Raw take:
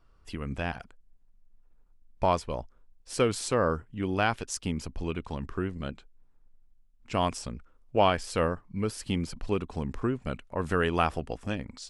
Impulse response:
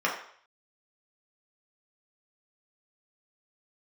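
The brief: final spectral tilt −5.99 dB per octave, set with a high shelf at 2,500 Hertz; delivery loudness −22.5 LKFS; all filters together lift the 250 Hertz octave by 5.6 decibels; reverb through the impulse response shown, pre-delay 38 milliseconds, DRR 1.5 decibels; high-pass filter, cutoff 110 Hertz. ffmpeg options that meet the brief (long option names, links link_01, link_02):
-filter_complex "[0:a]highpass=110,equalizer=frequency=250:width_type=o:gain=7.5,highshelf=frequency=2500:gain=-7,asplit=2[link_01][link_02];[1:a]atrim=start_sample=2205,adelay=38[link_03];[link_02][link_03]afir=irnorm=-1:irlink=0,volume=-14dB[link_04];[link_01][link_04]amix=inputs=2:normalize=0,volume=5dB"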